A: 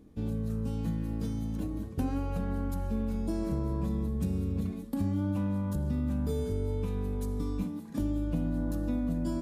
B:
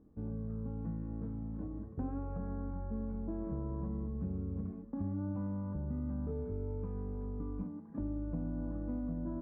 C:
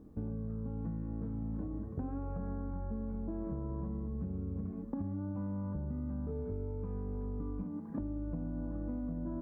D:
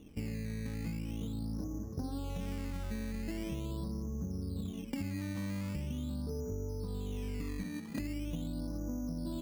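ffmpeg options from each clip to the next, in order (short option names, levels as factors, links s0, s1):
-af "lowpass=f=1400:w=0.5412,lowpass=f=1400:w=1.3066,volume=0.447"
-af "acompressor=threshold=0.00708:ratio=6,volume=2.51"
-af "acrusher=samples=14:mix=1:aa=0.000001:lfo=1:lforange=14:lforate=0.42"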